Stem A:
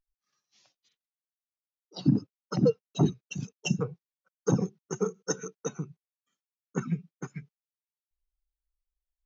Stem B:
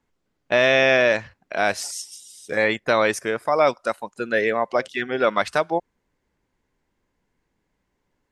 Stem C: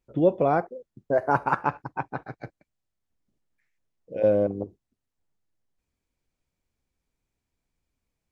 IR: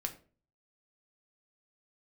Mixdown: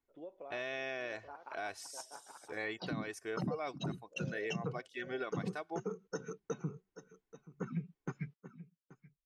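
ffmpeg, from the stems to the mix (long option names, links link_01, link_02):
-filter_complex "[0:a]lowpass=3800,agate=range=-12dB:threshold=-50dB:ratio=16:detection=peak,acompressor=threshold=-24dB:ratio=6,adelay=850,volume=0dB,asplit=2[link_01][link_02];[link_02]volume=-21dB[link_03];[1:a]aecho=1:1:2.7:0.54,volume=-16.5dB[link_04];[2:a]highpass=470,acompressor=threshold=-26dB:ratio=6,volume=-19dB,asplit=2[link_05][link_06];[link_06]volume=-6.5dB[link_07];[link_03][link_07]amix=inputs=2:normalize=0,aecho=0:1:830:1[link_08];[link_01][link_04][link_05][link_08]amix=inputs=4:normalize=0,alimiter=level_in=4dB:limit=-24dB:level=0:latency=1:release=335,volume=-4dB"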